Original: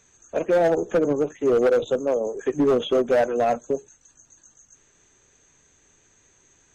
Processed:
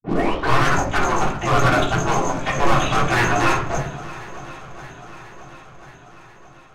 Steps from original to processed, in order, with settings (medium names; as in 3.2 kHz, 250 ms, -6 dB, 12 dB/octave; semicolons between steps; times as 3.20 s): tape start-up on the opening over 0.71 s; spectral gate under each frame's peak -20 dB weak; waveshaping leveller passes 5; level-controlled noise filter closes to 2 kHz, open at -19.5 dBFS; saturation -14.5 dBFS, distortion -31 dB; shuffle delay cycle 1040 ms, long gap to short 1.5:1, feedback 52%, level -17.5 dB; reverberation RT60 0.55 s, pre-delay 3 ms, DRR -3 dB